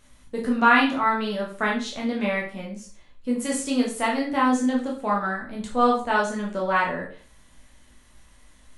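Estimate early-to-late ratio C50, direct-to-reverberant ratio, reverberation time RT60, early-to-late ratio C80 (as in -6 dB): 7.0 dB, -3.0 dB, 0.45 s, 12.0 dB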